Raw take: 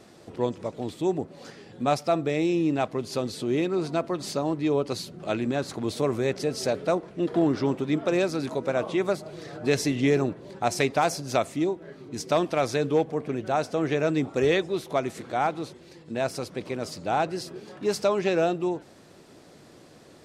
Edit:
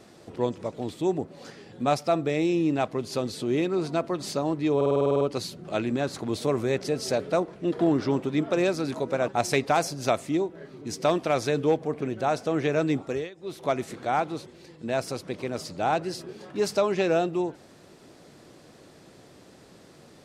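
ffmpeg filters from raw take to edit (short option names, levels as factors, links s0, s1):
-filter_complex "[0:a]asplit=13[s0][s1][s2][s3][s4][s5][s6][s7][s8][s9][s10][s11][s12];[s0]atrim=end=4.812[s13];[s1]atrim=start=4.758:end=4.812[s14];[s2]atrim=start=4.758:end=4.812[s15];[s3]atrim=start=4.758:end=4.812[s16];[s4]atrim=start=4.758:end=4.812[s17];[s5]atrim=start=4.758:end=4.812[s18];[s6]atrim=start=4.758:end=4.812[s19];[s7]atrim=start=4.758:end=4.812[s20];[s8]atrim=start=4.758:end=4.812[s21];[s9]atrim=start=4.758:end=8.832[s22];[s10]atrim=start=10.548:end=14.57,asetpts=PTS-STARTPTS,afade=t=out:st=3.682:d=0.34:silence=0.0841395[s23];[s11]atrim=start=14.57:end=14.62,asetpts=PTS-STARTPTS,volume=0.0841[s24];[s12]atrim=start=14.62,asetpts=PTS-STARTPTS,afade=t=in:d=0.34:silence=0.0841395[s25];[s13][s14]acrossfade=d=0.004:c1=hsin:c2=hsin[s26];[s26][s15]acrossfade=d=0.004:c1=hsin:c2=hsin[s27];[s27][s16]acrossfade=d=0.004:c1=hsin:c2=hsin[s28];[s28][s17]acrossfade=d=0.004:c1=hsin:c2=hsin[s29];[s29][s18]acrossfade=d=0.004:c1=hsin:c2=hsin[s30];[s30][s19]acrossfade=d=0.004:c1=hsin:c2=hsin[s31];[s31][s20]acrossfade=d=0.004:c1=hsin:c2=hsin[s32];[s32][s21]acrossfade=d=0.004:c1=hsin:c2=hsin[s33];[s33][s22]acrossfade=d=0.004:c1=hsin:c2=hsin[s34];[s23][s24][s25]concat=n=3:v=0:a=1[s35];[s34][s35]acrossfade=d=0.004:c1=hsin:c2=hsin"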